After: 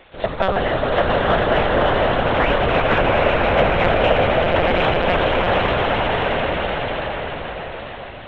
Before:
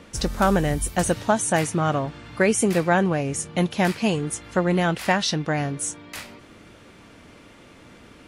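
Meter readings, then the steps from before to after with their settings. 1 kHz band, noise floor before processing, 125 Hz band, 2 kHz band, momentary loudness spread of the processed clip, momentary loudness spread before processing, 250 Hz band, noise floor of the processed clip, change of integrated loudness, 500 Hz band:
+8.0 dB, −49 dBFS, +2.0 dB, +7.5 dB, 11 LU, 9 LU, −1.0 dB, −34 dBFS, +4.5 dB, +8.0 dB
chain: ceiling on every frequency bin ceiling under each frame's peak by 20 dB
on a send: echo that builds up and dies away 84 ms, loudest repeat 8, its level −6 dB
on the sum: transient designer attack +3 dB, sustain +8 dB
linear-prediction vocoder at 8 kHz pitch kept
in parallel at −5 dB: soft clipping −9 dBFS, distortion −17 dB
on the sum: parametric band 560 Hz +10 dB 1 octave
level −7.5 dB

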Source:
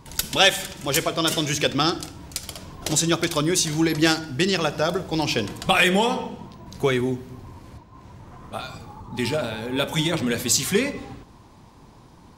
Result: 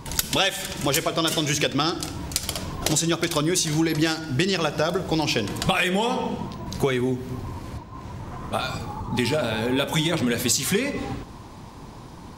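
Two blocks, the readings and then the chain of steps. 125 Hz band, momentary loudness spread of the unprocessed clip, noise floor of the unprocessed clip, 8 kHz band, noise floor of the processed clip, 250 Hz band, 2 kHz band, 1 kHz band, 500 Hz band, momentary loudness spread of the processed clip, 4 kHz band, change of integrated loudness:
+1.5 dB, 17 LU, −49 dBFS, −1.0 dB, −41 dBFS, 0.0 dB, −2.5 dB, −1.0 dB, −1.0 dB, 15 LU, −1.5 dB, −1.5 dB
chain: downward compressor 5 to 1, threshold −28 dBFS, peak gain reduction 15 dB
level +8 dB

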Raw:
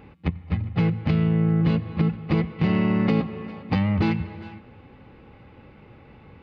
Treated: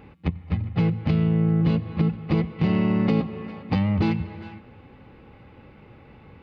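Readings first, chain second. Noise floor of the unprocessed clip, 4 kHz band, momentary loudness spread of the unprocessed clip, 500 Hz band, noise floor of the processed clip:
−50 dBFS, −1.0 dB, 11 LU, 0.0 dB, −50 dBFS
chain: dynamic equaliser 1,700 Hz, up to −4 dB, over −43 dBFS, Q 1.2

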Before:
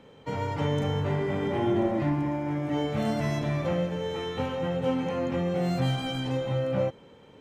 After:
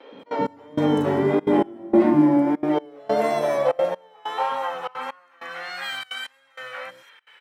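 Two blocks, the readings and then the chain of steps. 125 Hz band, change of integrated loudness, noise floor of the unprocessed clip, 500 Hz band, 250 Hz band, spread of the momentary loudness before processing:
−6.5 dB, +6.0 dB, −53 dBFS, +5.5 dB, +6.5 dB, 5 LU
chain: dynamic equaliser 2,600 Hz, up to −6 dB, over −52 dBFS, Q 1.2
notch filter 6,600 Hz, Q 5.7
pitch vibrato 1.6 Hz 58 cents
three-band delay without the direct sound mids, lows, highs 120/190 ms, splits 380/5,600 Hz
high-pass filter sweep 280 Hz → 1,700 Hz, 0:02.18–0:05.80
gate pattern "xxx.xx....xxxxx" 194 BPM −24 dB
level +8.5 dB

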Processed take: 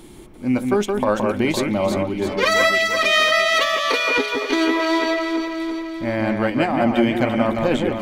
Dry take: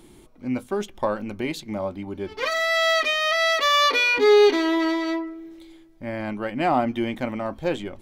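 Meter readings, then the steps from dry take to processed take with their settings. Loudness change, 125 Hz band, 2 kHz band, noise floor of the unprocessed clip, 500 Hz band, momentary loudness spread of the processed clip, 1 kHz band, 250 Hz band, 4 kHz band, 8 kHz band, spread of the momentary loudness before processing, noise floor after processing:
+3.0 dB, +8.5 dB, +4.0 dB, −50 dBFS, +2.0 dB, 8 LU, +2.5 dB, +6.5 dB, +2.5 dB, +5.0 dB, 15 LU, −40 dBFS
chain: dynamic equaliser 8,900 Hz, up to +5 dB, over −45 dBFS, Q 1.3
compressor whose output falls as the input rises −23 dBFS, ratio −0.5
on a send: delay that swaps between a low-pass and a high-pass 170 ms, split 2,400 Hz, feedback 74%, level −4 dB
on the sum: level +4.5 dB

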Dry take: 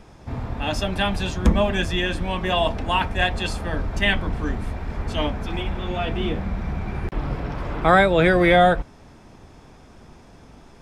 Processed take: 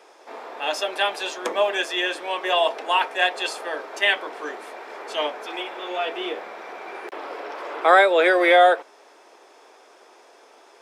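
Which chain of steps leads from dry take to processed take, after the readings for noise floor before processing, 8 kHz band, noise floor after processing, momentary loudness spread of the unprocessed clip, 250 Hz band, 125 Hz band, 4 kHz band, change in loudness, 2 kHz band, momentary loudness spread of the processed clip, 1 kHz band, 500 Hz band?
−48 dBFS, +1.5 dB, −52 dBFS, 13 LU, −9.0 dB, below −40 dB, +1.5 dB, +1.0 dB, +1.5 dB, 20 LU, +1.5 dB, +1.0 dB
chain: Butterworth high-pass 380 Hz 36 dB per octave
level +1.5 dB

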